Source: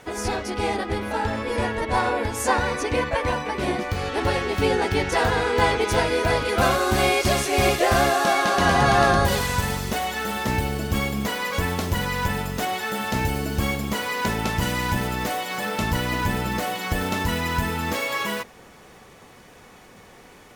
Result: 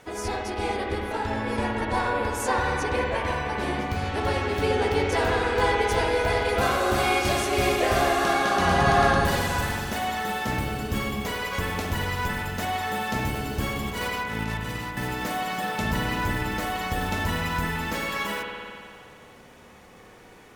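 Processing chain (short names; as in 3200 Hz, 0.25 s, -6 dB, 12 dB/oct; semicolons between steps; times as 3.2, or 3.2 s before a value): in parallel at -12 dB: overloaded stage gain 14.5 dB; 13.73–14.97 on the sum: negative-ratio compressor -26 dBFS, ratio -0.5; spring tank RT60 2.3 s, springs 55 ms, chirp 45 ms, DRR 1 dB; gain -6.5 dB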